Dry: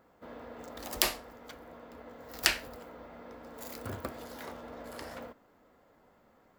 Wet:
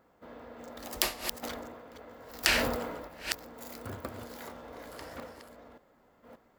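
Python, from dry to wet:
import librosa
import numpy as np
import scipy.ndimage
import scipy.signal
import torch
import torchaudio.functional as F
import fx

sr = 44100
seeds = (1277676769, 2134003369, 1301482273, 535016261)

y = fx.reverse_delay(x, sr, ms=578, wet_db=-6.0)
y = fx.sustainer(y, sr, db_per_s=36.0, at=(1.42, 3.07), fade=0.02)
y = F.gain(torch.from_numpy(y), -1.5).numpy()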